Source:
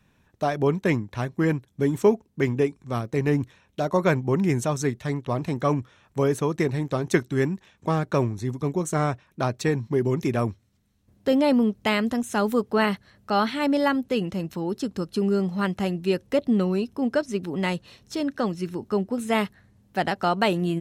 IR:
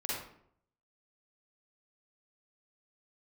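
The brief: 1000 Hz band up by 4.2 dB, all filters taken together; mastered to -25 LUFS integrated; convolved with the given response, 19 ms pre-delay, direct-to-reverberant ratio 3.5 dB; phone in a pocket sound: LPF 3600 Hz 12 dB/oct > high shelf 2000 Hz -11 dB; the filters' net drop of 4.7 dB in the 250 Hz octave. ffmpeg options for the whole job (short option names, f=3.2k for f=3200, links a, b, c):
-filter_complex "[0:a]equalizer=f=250:t=o:g=-6.5,equalizer=f=1k:t=o:g=8.5,asplit=2[a][b];[1:a]atrim=start_sample=2205,adelay=19[c];[b][c]afir=irnorm=-1:irlink=0,volume=-7.5dB[d];[a][d]amix=inputs=2:normalize=0,lowpass=3.6k,highshelf=f=2k:g=-11,volume=-0.5dB"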